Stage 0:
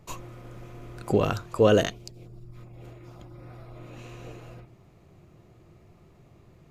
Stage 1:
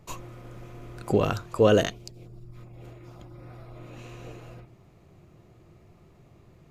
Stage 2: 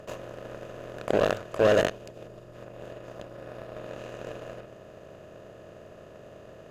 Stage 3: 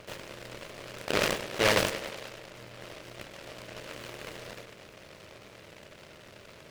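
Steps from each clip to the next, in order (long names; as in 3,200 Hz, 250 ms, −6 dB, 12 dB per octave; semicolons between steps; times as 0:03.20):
no processing that can be heard
compressor on every frequency bin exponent 0.4; hollow resonant body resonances 610/1,700/2,500 Hz, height 11 dB, ringing for 35 ms; harmonic generator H 3 −25 dB, 5 −29 dB, 7 −19 dB, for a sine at −2 dBFS; level −7 dB
tape delay 100 ms, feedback 79%, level −11 dB, low-pass 3,900 Hz; flanger 1.1 Hz, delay 9.6 ms, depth 5.3 ms, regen −49%; short delay modulated by noise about 1,800 Hz, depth 0.25 ms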